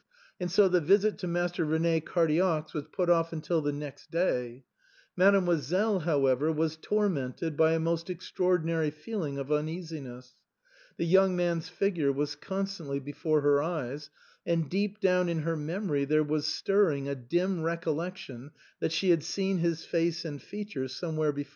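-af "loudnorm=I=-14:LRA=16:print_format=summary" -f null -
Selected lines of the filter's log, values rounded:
Input Integrated:    -29.3 LUFS
Input True Peak:     -12.4 dBTP
Input LRA:             2.4 LU
Input Threshold:     -39.6 LUFS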